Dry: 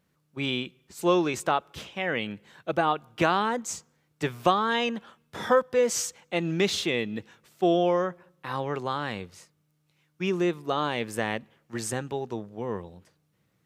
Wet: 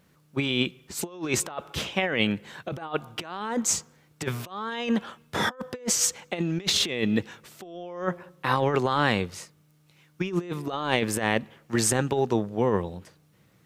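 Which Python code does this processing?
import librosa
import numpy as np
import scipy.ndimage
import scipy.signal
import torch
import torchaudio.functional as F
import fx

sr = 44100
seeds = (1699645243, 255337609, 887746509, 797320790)

y = fx.over_compress(x, sr, threshold_db=-31.0, ratio=-0.5)
y = y * librosa.db_to_amplitude(5.0)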